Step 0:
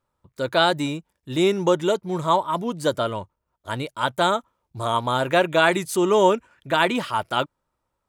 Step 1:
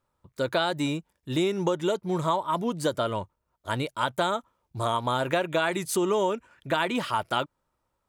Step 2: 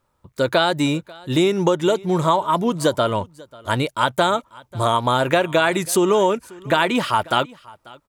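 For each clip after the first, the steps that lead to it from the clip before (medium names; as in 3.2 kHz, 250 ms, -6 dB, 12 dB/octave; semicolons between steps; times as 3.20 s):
compression 6:1, threshold -22 dBFS, peak gain reduction 10.5 dB
delay 541 ms -23 dB; trim +8 dB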